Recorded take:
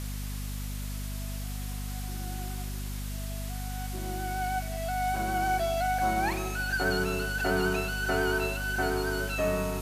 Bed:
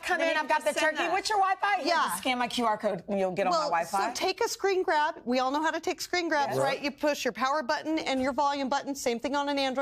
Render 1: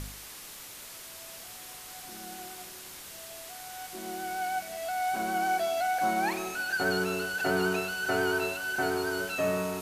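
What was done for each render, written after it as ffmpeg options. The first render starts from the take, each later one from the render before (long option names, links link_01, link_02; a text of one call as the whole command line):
ffmpeg -i in.wav -af "bandreject=frequency=50:width_type=h:width=4,bandreject=frequency=100:width_type=h:width=4,bandreject=frequency=150:width_type=h:width=4,bandreject=frequency=200:width_type=h:width=4,bandreject=frequency=250:width_type=h:width=4" out.wav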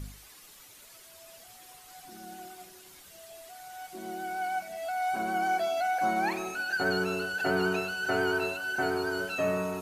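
ffmpeg -i in.wav -af "afftdn=noise_reduction=10:noise_floor=-45" out.wav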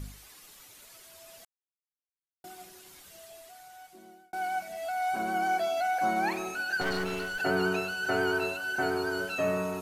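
ffmpeg -i in.wav -filter_complex "[0:a]asettb=1/sr,asplit=3[link_01][link_02][link_03];[link_01]atrim=end=6.814[link_04];[link_02]atrim=start=6.81:end=7.4,asetpts=PTS-STARTPTS,afade=type=in:duration=0.004:curve=qsin,afade=type=out:start_time=0.586:duration=0.004:curve=qsin,aeval=exprs='clip(val(0),-1,0.0168)':channel_layout=same[link_05];[link_03]atrim=start=7.396[link_06];[link_04][link_05]acrossfade=duration=0.004:curve1=hsin:curve2=qsin[link_07];[link_07][link_06]acrossfade=duration=0.004:curve1=qsin:curve2=hsin,asplit=4[link_08][link_09][link_10][link_11];[link_08]atrim=end=1.45,asetpts=PTS-STARTPTS,afade=type=out:start_time=1.446:duration=0.004:curve=hsin[link_12];[link_09]atrim=start=1.45:end=2.44,asetpts=PTS-STARTPTS,volume=0[link_13];[link_10]atrim=start=2.44:end=4.33,asetpts=PTS-STARTPTS,afade=type=in:duration=0.004:curve=hsin,afade=type=out:start_time=0.73:duration=1.16[link_14];[link_11]atrim=start=4.33,asetpts=PTS-STARTPTS,afade=type=in:duration=0.004:curve=hsin[link_15];[link_12][link_13][link_14][link_15]concat=n=4:v=0:a=1" out.wav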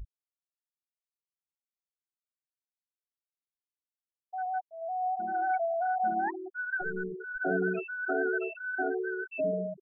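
ffmpeg -i in.wav -af "lowpass=frequency=2900:poles=1,afftfilt=real='re*gte(hypot(re,im),0.112)':imag='im*gte(hypot(re,im),0.112)':win_size=1024:overlap=0.75" out.wav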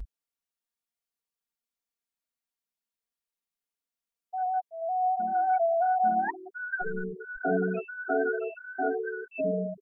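ffmpeg -i in.wav -af "aecho=1:1:4.3:0.99" out.wav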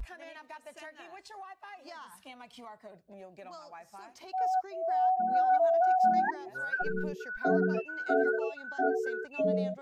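ffmpeg -i in.wav -i bed.wav -filter_complex "[1:a]volume=-21dB[link_01];[0:a][link_01]amix=inputs=2:normalize=0" out.wav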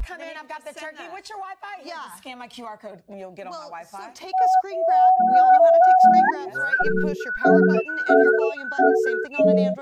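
ffmpeg -i in.wav -af "volume=11.5dB" out.wav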